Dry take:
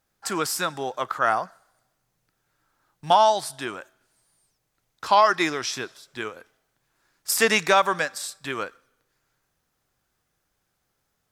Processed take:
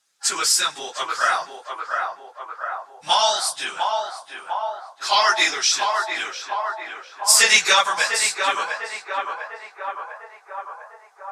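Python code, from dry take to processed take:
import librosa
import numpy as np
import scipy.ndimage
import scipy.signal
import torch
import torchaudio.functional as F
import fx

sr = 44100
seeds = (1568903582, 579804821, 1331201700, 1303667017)

y = fx.phase_scramble(x, sr, seeds[0], window_ms=50)
y = fx.weighting(y, sr, curve='ITU-R 468')
y = fx.echo_banded(y, sr, ms=700, feedback_pct=74, hz=810.0, wet_db=-3)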